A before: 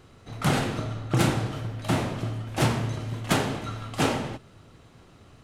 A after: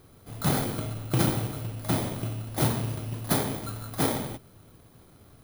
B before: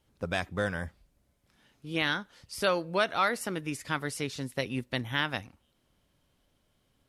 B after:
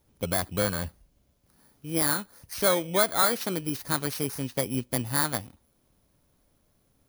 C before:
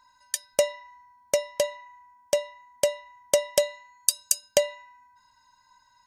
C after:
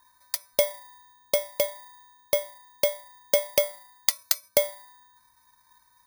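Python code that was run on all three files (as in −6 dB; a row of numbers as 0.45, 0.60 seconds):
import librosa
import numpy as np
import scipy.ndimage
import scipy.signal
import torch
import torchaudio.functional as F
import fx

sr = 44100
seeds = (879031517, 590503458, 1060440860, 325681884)

y = fx.bit_reversed(x, sr, seeds[0], block=16)
y = y * 10.0 ** (-30 / 20.0) / np.sqrt(np.mean(np.square(y)))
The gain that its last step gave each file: −2.0, +4.0, 0.0 decibels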